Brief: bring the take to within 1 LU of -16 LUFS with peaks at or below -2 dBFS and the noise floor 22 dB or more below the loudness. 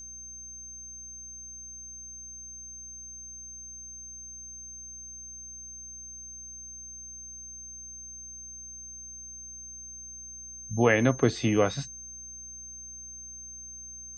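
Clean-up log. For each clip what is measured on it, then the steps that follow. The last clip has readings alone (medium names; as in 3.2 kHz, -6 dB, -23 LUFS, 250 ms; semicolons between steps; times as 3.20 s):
hum 60 Hz; highest harmonic 300 Hz; hum level -53 dBFS; steady tone 6.3 kHz; tone level -41 dBFS; loudness -34.5 LUFS; peak level -8.5 dBFS; loudness target -16.0 LUFS
-> de-hum 60 Hz, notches 5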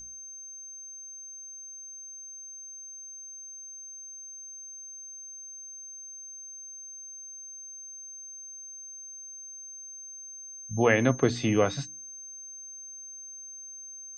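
hum not found; steady tone 6.3 kHz; tone level -41 dBFS
-> band-stop 6.3 kHz, Q 30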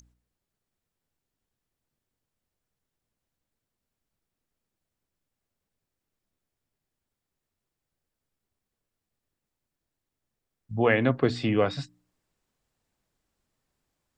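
steady tone not found; loudness -25.0 LUFS; peak level -9.0 dBFS; loudness target -16.0 LUFS
-> trim +9 dB; peak limiter -2 dBFS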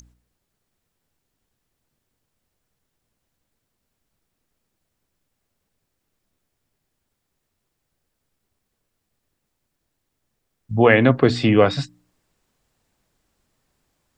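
loudness -16.5 LUFS; peak level -2.0 dBFS; noise floor -77 dBFS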